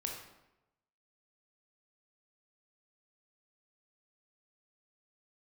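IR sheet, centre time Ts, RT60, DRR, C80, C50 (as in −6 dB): 40 ms, 0.95 s, 0.5 dB, 6.5 dB, 3.5 dB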